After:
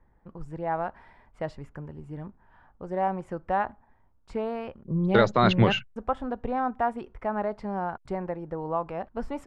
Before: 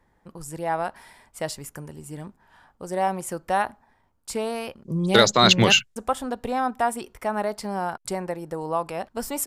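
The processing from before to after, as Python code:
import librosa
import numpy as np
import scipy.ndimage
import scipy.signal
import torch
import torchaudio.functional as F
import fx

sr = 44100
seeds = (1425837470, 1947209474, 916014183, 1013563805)

y = scipy.signal.sosfilt(scipy.signal.butter(2, 1800.0, 'lowpass', fs=sr, output='sos'), x)
y = fx.low_shelf(y, sr, hz=80.0, db=11.5)
y = y * librosa.db_to_amplitude(-3.0)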